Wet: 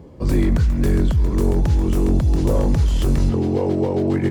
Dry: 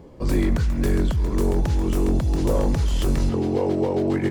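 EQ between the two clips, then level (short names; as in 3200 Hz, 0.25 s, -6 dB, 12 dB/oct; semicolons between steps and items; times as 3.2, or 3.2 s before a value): HPF 47 Hz; low shelf 220 Hz +7 dB; 0.0 dB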